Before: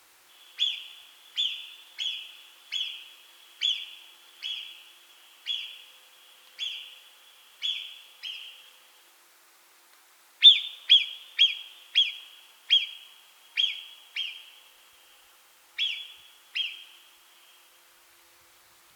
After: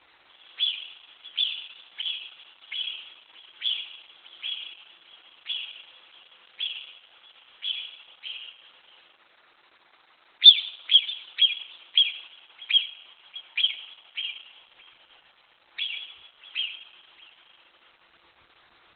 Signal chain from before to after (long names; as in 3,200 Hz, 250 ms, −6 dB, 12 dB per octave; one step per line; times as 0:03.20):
tape delay 631 ms, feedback 53%, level −14 dB, low-pass 1,100 Hz
level +4.5 dB
Opus 8 kbit/s 48,000 Hz